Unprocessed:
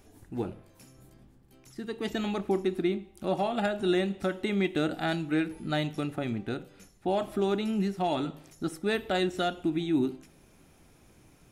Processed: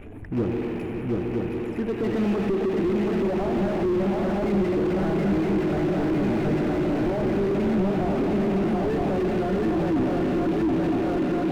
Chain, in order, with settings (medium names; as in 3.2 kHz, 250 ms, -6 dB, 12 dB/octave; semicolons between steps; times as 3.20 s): resonances exaggerated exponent 1.5; in parallel at -11 dB: bit crusher 5-bit; on the sum: shuffle delay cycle 965 ms, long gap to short 3:1, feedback 60%, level -4 dB; on a send at -4 dB: reverberation RT60 4.7 s, pre-delay 74 ms; on the sum: compression 2.5:1, threshold -26 dBFS, peak gain reduction 8 dB; power-law waveshaper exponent 0.7; resonant high shelf 3.6 kHz -13.5 dB, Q 3; slew-rate limiter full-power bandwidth 19 Hz; trim +4.5 dB